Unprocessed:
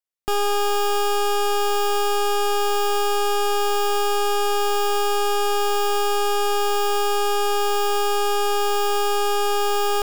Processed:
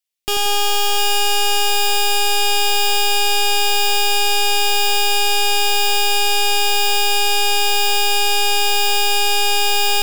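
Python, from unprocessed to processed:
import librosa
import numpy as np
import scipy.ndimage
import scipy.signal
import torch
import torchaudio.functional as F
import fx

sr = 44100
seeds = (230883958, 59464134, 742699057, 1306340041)

y = fx.high_shelf_res(x, sr, hz=1900.0, db=8.5, q=1.5)
y = fx.echo_split(y, sr, split_hz=1500.0, low_ms=89, high_ms=705, feedback_pct=52, wet_db=-5.0)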